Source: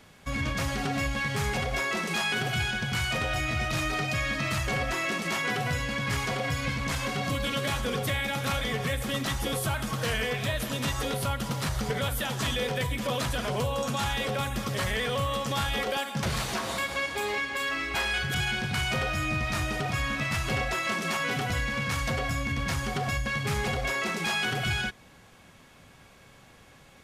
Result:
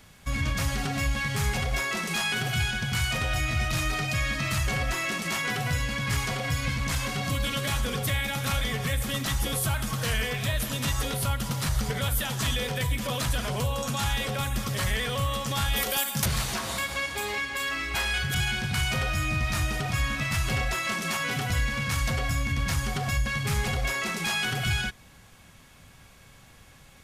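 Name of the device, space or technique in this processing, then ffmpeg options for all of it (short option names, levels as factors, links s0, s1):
smiley-face EQ: -filter_complex "[0:a]lowshelf=f=110:g=7.5,equalizer=f=410:t=o:w=1.9:g=-4,highshelf=f=6600:g=7,asettb=1/sr,asplit=3[s0][s1][s2];[s0]atrim=end=15.764[s3];[s1]atrim=start=15.76:end=16.26,asetpts=PTS-STARTPTS,afade=t=in:d=0.004:c=qsin,afade=t=out:st=0.496:d=0.004:c=qsin,aemphasis=mode=production:type=50fm[s4];[s2]atrim=start=16.256[s5];[s3][s4]acrossfade=d=0.004:c1=hsin:c2=qsin[s6];[s6][s5]acrossfade=d=0.004:c1=qsin:c2=hsin"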